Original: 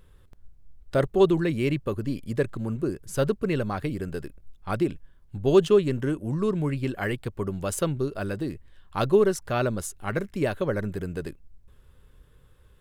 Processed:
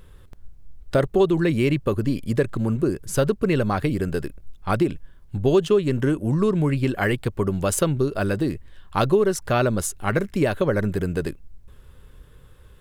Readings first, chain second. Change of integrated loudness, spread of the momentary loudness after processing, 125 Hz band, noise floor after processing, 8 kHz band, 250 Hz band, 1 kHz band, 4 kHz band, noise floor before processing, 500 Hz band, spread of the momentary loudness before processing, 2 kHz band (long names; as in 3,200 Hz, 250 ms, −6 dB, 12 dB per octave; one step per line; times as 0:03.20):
+4.0 dB, 8 LU, +5.5 dB, −49 dBFS, +7.0 dB, +4.5 dB, +5.0 dB, +4.0 dB, −56 dBFS, +2.5 dB, 13 LU, +5.5 dB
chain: downward compressor 3 to 1, threshold −24 dBFS, peak gain reduction 9 dB
level +7.5 dB